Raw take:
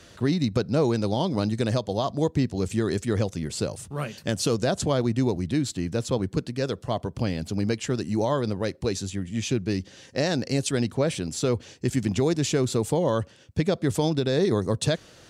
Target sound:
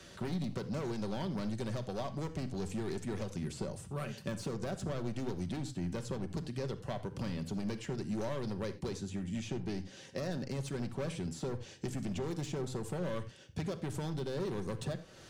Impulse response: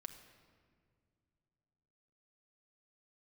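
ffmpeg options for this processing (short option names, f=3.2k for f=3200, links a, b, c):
-filter_complex "[0:a]asoftclip=type=hard:threshold=-22.5dB,acrossover=split=110|2000[a][b][c];[a]acompressor=threshold=-41dB:ratio=4[d];[b]acompressor=threshold=-34dB:ratio=4[e];[c]acompressor=threshold=-48dB:ratio=4[f];[d][e][f]amix=inputs=3:normalize=0[g];[1:a]atrim=start_sample=2205,afade=t=out:st=0.15:d=0.01,atrim=end_sample=7056[h];[g][h]afir=irnorm=-1:irlink=0,volume=2dB"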